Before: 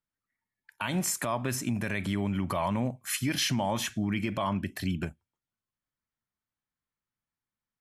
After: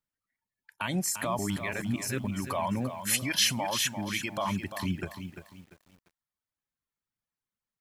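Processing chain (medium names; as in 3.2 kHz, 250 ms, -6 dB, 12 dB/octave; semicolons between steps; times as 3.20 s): reverb removal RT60 1.1 s; 1.39–2.24 s: reverse; 3.00–4.38 s: tilt shelf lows -5.5 dB, about 910 Hz; bit-crushed delay 345 ms, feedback 35%, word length 9-bit, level -9 dB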